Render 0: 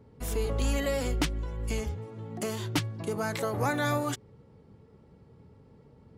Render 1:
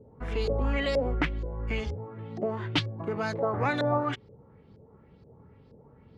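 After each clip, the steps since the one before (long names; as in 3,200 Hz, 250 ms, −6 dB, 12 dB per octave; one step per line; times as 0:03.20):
auto-filter low-pass saw up 2.1 Hz 470–5,200 Hz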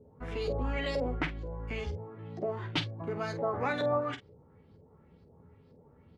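ambience of single reflections 12 ms −6.5 dB, 48 ms −11 dB
level −5 dB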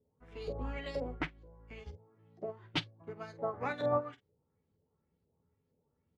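expander for the loud parts 2.5 to 1, over −40 dBFS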